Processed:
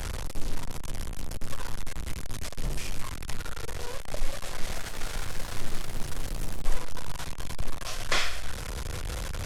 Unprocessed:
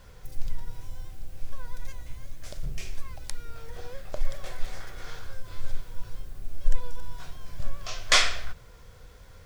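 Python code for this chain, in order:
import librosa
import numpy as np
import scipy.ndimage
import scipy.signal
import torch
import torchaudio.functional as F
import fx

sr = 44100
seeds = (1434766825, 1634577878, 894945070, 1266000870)

y = fx.delta_mod(x, sr, bps=64000, step_db=-30.0)
y = fx.echo_pitch(y, sr, ms=458, semitones=3, count=2, db_per_echo=-6.0, at=(4.24, 6.62))
y = fx.band_squash(y, sr, depth_pct=40)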